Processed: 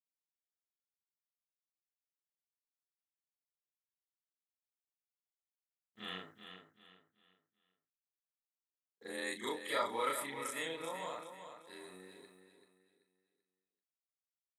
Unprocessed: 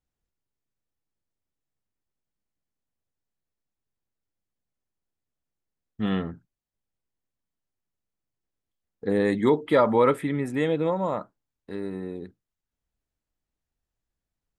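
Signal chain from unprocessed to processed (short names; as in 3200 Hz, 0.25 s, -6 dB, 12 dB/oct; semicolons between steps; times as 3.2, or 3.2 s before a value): short-time reversal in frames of 86 ms; gate with hold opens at -46 dBFS; differentiator; on a send: feedback echo 0.385 s, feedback 33%, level -9 dB; on the sum: gain +7 dB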